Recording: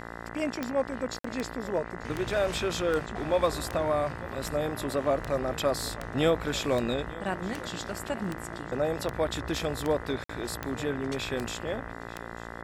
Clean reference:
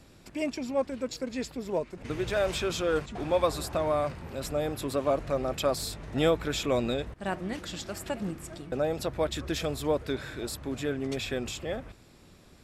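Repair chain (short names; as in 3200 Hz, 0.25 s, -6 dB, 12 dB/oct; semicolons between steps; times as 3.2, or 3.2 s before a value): de-click; de-hum 57.5 Hz, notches 35; interpolate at 1.19/10.24, 54 ms; inverse comb 0.892 s -20 dB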